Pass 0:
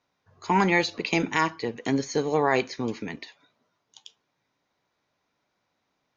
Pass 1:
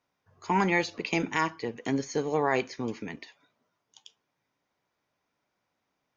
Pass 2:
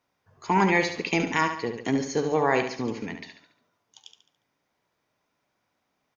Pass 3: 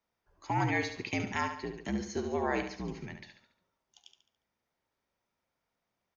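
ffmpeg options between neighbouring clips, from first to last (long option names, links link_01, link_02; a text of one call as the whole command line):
ffmpeg -i in.wav -af "equalizer=frequency=4000:width=6.9:gain=-6.5,volume=-3.5dB" out.wav
ffmpeg -i in.wav -af "aecho=1:1:71|142|213|284|355:0.398|0.175|0.0771|0.0339|0.0149,volume=3dB" out.wav
ffmpeg -i in.wav -af "afreqshift=-63,volume=-8.5dB" out.wav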